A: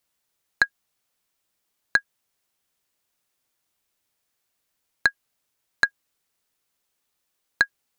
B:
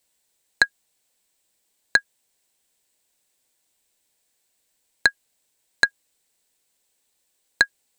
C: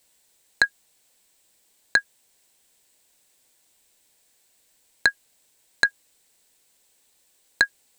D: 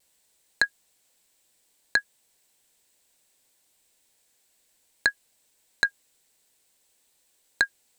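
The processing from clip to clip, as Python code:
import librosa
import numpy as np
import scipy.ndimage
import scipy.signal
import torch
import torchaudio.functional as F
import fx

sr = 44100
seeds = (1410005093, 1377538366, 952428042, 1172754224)

y1 = fx.graphic_eq_31(x, sr, hz=(100, 160, 500, 1250, 4000, 8000), db=(-10, -3, 3, -9, 3, 9))
y1 = y1 * 10.0 ** (3.5 / 20.0)
y2 = fx.over_compress(y1, sr, threshold_db=-17.0, ratio=-0.5)
y2 = y2 * 10.0 ** (3.0 / 20.0)
y3 = fx.vibrato(y2, sr, rate_hz=0.62, depth_cents=16.0)
y3 = y3 * 10.0 ** (-3.5 / 20.0)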